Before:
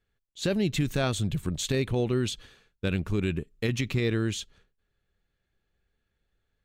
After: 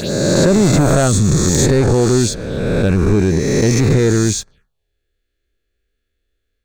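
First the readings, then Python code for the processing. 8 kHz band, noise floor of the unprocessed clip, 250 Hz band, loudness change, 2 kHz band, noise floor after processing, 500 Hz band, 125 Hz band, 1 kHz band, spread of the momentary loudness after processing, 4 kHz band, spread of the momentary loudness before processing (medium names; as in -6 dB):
+19.5 dB, -80 dBFS, +15.5 dB, +15.0 dB, +11.0 dB, -72 dBFS, +16.0 dB, +15.5 dB, +16.5 dB, 6 LU, +10.5 dB, 6 LU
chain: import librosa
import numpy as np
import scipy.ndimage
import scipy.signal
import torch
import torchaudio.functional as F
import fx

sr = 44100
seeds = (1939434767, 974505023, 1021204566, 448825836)

y = fx.spec_swells(x, sr, rise_s=1.92)
y = fx.env_phaser(y, sr, low_hz=150.0, high_hz=3000.0, full_db=-30.0)
y = fx.leveller(y, sr, passes=2)
y = F.gain(torch.from_numpy(y), 6.5).numpy()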